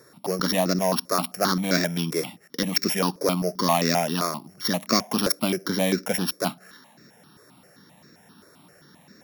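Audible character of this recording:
a buzz of ramps at a fixed pitch in blocks of 8 samples
notches that jump at a steady rate 7.6 Hz 800–3,100 Hz

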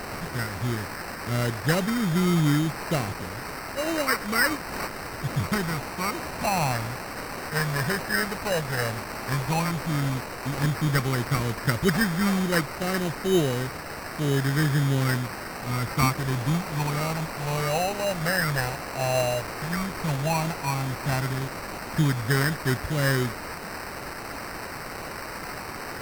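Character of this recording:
a quantiser's noise floor 6 bits, dither triangular
phaser sweep stages 6, 0.093 Hz, lowest notch 310–1,000 Hz
aliases and images of a low sample rate 3,400 Hz, jitter 0%
MP3

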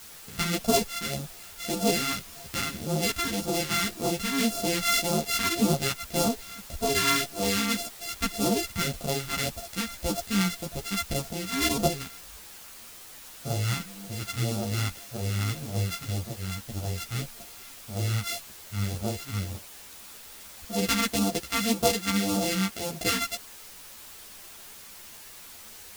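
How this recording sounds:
a buzz of ramps at a fixed pitch in blocks of 64 samples
phaser sweep stages 2, 1.8 Hz, lowest notch 540–1,800 Hz
a quantiser's noise floor 8 bits, dither triangular
a shimmering, thickened sound

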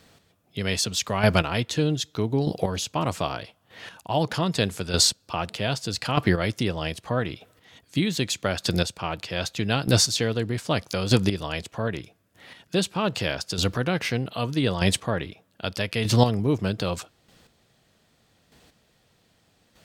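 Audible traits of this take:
chopped level 0.81 Hz, depth 60%, duty 15%

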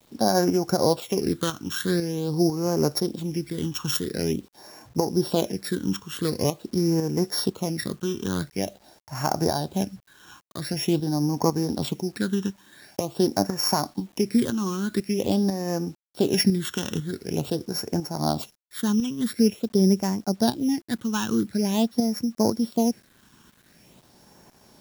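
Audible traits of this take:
a buzz of ramps at a fixed pitch in blocks of 8 samples
tremolo saw up 2 Hz, depth 55%
phaser sweep stages 8, 0.46 Hz, lowest notch 630–3,500 Hz
a quantiser's noise floor 10 bits, dither none

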